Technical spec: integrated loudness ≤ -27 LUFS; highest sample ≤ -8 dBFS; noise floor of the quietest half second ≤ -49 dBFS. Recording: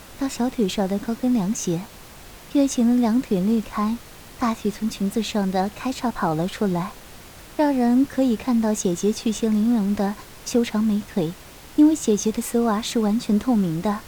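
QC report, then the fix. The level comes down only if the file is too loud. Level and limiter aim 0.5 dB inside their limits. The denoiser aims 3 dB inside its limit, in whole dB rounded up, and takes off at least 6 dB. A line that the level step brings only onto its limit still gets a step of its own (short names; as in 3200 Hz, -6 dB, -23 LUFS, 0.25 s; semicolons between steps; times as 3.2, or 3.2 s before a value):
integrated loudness -22.5 LUFS: fail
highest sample -7.0 dBFS: fail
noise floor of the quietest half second -43 dBFS: fail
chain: denoiser 6 dB, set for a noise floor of -43 dBFS; gain -5 dB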